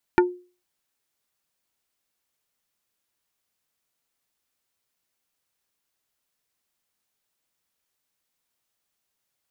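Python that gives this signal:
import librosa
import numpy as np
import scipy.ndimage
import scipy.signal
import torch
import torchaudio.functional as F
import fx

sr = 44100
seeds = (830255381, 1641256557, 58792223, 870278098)

y = fx.strike_wood(sr, length_s=0.45, level_db=-11, body='plate', hz=358.0, decay_s=0.36, tilt_db=3, modes=5)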